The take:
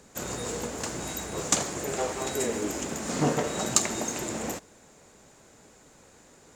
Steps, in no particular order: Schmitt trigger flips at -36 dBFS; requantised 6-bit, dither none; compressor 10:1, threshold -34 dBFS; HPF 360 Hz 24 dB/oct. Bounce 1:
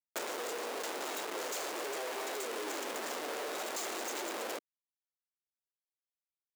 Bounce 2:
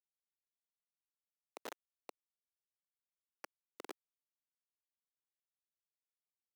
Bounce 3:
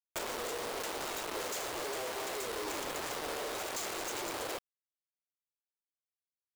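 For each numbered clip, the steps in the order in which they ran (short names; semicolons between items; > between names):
requantised > Schmitt trigger > HPF > compressor; compressor > Schmitt trigger > requantised > HPF; Schmitt trigger > HPF > requantised > compressor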